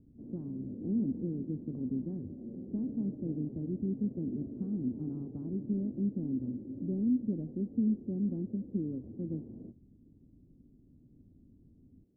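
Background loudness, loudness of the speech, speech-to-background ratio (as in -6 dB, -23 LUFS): -45.0 LUFS, -36.0 LUFS, 9.0 dB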